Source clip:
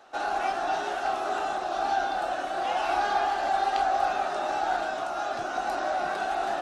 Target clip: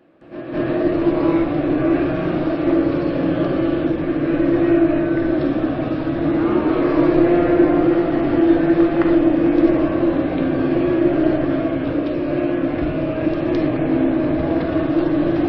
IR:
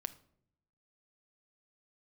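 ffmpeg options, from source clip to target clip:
-filter_complex "[0:a]asplit=2[a][b];[b]bass=f=250:g=11,treble=f=4k:g=0[c];[1:a]atrim=start_sample=2205,adelay=91[d];[c][d]afir=irnorm=-1:irlink=0,volume=11.5dB[e];[a][e]amix=inputs=2:normalize=0,asetrate=18846,aresample=44100"

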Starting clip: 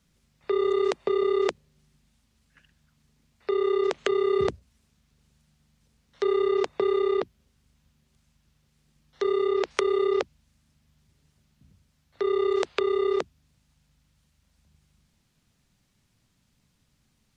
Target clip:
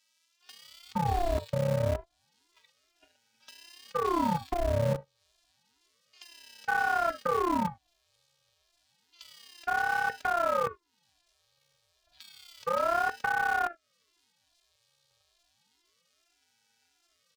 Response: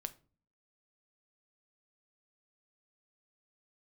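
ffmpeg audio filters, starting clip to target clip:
-filter_complex "[1:a]atrim=start_sample=2205,afade=t=out:st=0.14:d=0.01,atrim=end_sample=6615,asetrate=48510,aresample=44100[a];[0:a][a]afir=irnorm=-1:irlink=0,asplit=2[b][c];[c]acrusher=samples=39:mix=1:aa=0.000001,volume=-4dB[d];[b][d]amix=inputs=2:normalize=0,equalizer=f=125:t=o:w=1:g=-5,equalizer=f=500:t=o:w=1:g=-8,equalizer=f=4k:t=o:w=1:g=8,afftfilt=real='hypot(re,im)*cos(PI*b)':imag='0':win_size=512:overlap=0.75,acrossover=split=1900[e][f];[e]adelay=460[g];[g][f]amix=inputs=2:normalize=0,acrossover=split=240|800[h][i][j];[h]acrusher=bits=6:mix=0:aa=0.000001[k];[j]acompressor=threshold=-58dB:ratio=4[l];[k][i][l]amix=inputs=3:normalize=0,aeval=exprs='val(0)*sin(2*PI*680*n/s+680*0.7/0.3*sin(2*PI*0.3*n/s))':c=same,volume=8.5dB"

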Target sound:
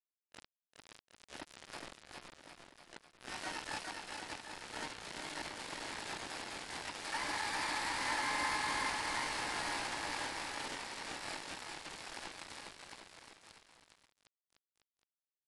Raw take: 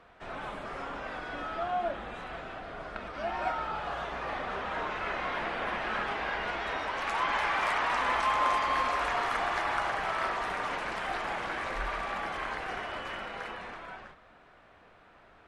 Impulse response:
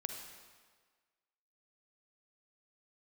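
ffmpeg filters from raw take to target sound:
-filter_complex "[0:a]afwtdn=0.0126,asplit=3[a][b][c];[a]bandpass=f=300:t=q:w=8,volume=0dB[d];[b]bandpass=f=870:t=q:w=8,volume=-6dB[e];[c]bandpass=f=2.24k:t=q:w=8,volume=-9dB[f];[d][e][f]amix=inputs=3:normalize=0,aresample=11025,acrusher=bits=6:mix=0:aa=0.000001,aresample=44100,aecho=1:1:410|758.5|1055|1307|1521:0.631|0.398|0.251|0.158|0.1,asplit=3[g][h][i];[h]asetrate=66075,aresample=44100,atempo=0.66742,volume=-9dB[j];[i]asetrate=88200,aresample=44100,atempo=0.5,volume=-1dB[k];[g][j][k]amix=inputs=3:normalize=0"

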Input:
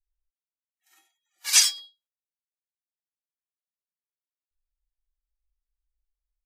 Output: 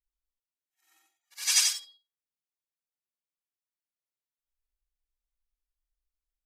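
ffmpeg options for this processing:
-af "afftfilt=real='re':imag='-im':win_size=8192:overlap=0.75"

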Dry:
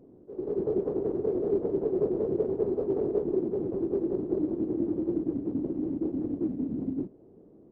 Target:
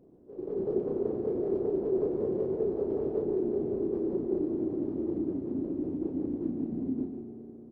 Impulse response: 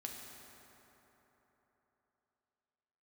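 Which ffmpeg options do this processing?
-filter_complex "[0:a]asplit=2[a][b];[b]adelay=34,volume=-5dB[c];[a][c]amix=inputs=2:normalize=0,asplit=2[d][e];[1:a]atrim=start_sample=2205,adelay=144[f];[e][f]afir=irnorm=-1:irlink=0,volume=-2.5dB[g];[d][g]amix=inputs=2:normalize=0,volume=-4.5dB"

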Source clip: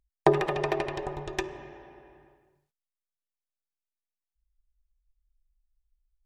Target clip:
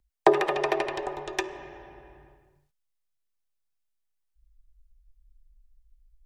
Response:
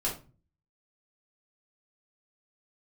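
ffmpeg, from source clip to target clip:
-filter_complex "[0:a]asubboost=boost=4:cutoff=130,acrossover=split=270|920|4000[a][b][c][d];[a]acompressor=threshold=-55dB:ratio=6[e];[e][b][c][d]amix=inputs=4:normalize=0,volume=3.5dB"

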